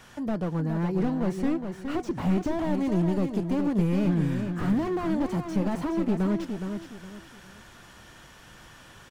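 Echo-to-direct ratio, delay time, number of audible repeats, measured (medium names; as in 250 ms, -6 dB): -6.5 dB, 416 ms, 3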